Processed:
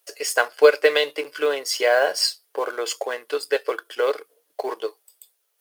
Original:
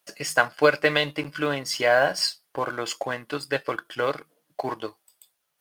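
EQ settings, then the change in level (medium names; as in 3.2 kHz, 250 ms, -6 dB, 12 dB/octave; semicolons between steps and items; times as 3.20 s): resonant high-pass 430 Hz, resonance Q 4.9; tilt EQ +2.5 dB/octave; -2.5 dB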